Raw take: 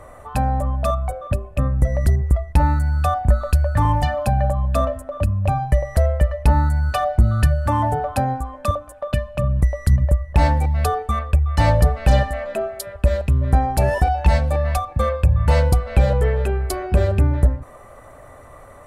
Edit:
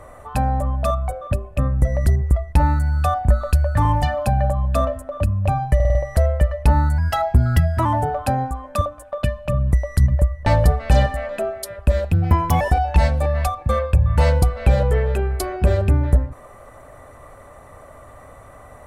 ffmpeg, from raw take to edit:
-filter_complex "[0:a]asplit=10[a][b][c][d][e][f][g][h][i][j];[a]atrim=end=5.802[k];[b]atrim=start=5.748:end=5.802[l];[c]atrim=start=5.748:end=5.802[m];[d]atrim=start=5.748:end=5.802[n];[e]atrim=start=5.748:end=6.784[o];[f]atrim=start=6.78:end=7.75,asetpts=PTS-STARTPTS,asetrate=48951,aresample=44100[p];[g]atrim=start=7.746:end=10.362[q];[h]atrim=start=11.628:end=13.294[r];[i]atrim=start=13.29:end=13.91,asetpts=PTS-STARTPTS,asetrate=56448,aresample=44100[s];[j]atrim=start=13.906[t];[k][l]acrossfade=d=0.004:c1=hsin:c2=hsin[u];[u][m]acrossfade=d=0.004:c1=hsin:c2=hsin[v];[v][n]acrossfade=d=0.004:c1=hsin:c2=hsin[w];[w][o]acrossfade=d=0.004:c1=hsin:c2=hsin[x];[x][p]acrossfade=d=0.004:c1=hsin:c2=hsin[y];[y][q]acrossfade=d=0.004:c1=hsin:c2=hsin[z];[z][r]acrossfade=d=0.004:c1=hsin:c2=hsin[aa];[aa][s]acrossfade=d=0.004:c1=hsin:c2=hsin[ab];[ab][t]acrossfade=d=0.004:c1=hsin:c2=hsin"

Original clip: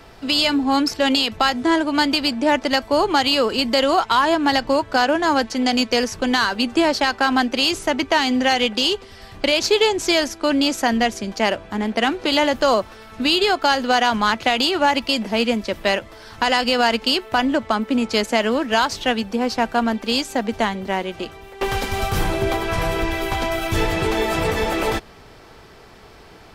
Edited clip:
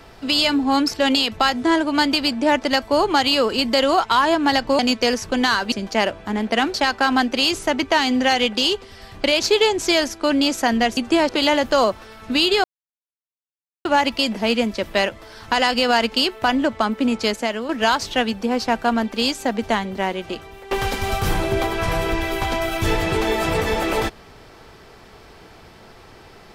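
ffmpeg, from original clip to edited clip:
-filter_complex "[0:a]asplit=9[a][b][c][d][e][f][g][h][i];[a]atrim=end=4.792[j];[b]atrim=start=5.688:end=6.622[k];[c]atrim=start=11.168:end=12.192[l];[d]atrim=start=6.938:end=11.172[m];[e]atrim=start=6.618:end=6.942[n];[f]atrim=start=12.188:end=13.54,asetpts=PTS-STARTPTS,afade=t=out:st=1.348:d=0.004:c=hsin[o];[g]atrim=start=13.54:end=14.75,asetpts=PTS-STARTPTS,volume=0[p];[h]atrim=start=14.75:end=18.59,asetpts=PTS-STARTPTS,afade=t=in:d=0.004:c=hsin,afade=t=out:st=3.31:d=0.53:silence=0.316228[q];[i]atrim=start=18.59,asetpts=PTS-STARTPTS,afade=t=in:d=0.004:c=hsin:silence=0.316228[r];[j][k]acrossfade=d=0.004:c1=hsin:c2=hsin[s];[s][l]acrossfade=d=0.004:c1=hsin:c2=hsin[t];[t][m]acrossfade=d=0.004:c1=hsin:c2=hsin[u];[u][n]acrossfade=d=0.004:c1=hsin:c2=hsin[v];[o][p][q][r]concat=n=4:v=0:a=1[w];[v][w]acrossfade=d=0.004:c1=hsin:c2=hsin"

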